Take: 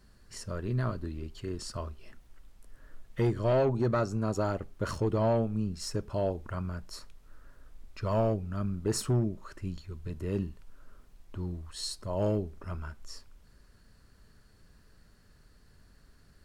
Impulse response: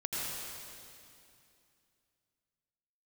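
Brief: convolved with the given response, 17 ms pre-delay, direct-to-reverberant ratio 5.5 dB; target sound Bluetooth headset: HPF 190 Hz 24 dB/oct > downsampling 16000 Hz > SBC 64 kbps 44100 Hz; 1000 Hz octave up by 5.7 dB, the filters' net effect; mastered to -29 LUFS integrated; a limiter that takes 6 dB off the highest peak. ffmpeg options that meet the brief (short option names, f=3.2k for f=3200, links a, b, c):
-filter_complex "[0:a]equalizer=f=1k:t=o:g=7.5,alimiter=limit=-21dB:level=0:latency=1,asplit=2[a][b];[1:a]atrim=start_sample=2205,adelay=17[c];[b][c]afir=irnorm=-1:irlink=0,volume=-10.5dB[d];[a][d]amix=inputs=2:normalize=0,highpass=f=190:w=0.5412,highpass=f=190:w=1.3066,aresample=16000,aresample=44100,volume=4.5dB" -ar 44100 -c:a sbc -b:a 64k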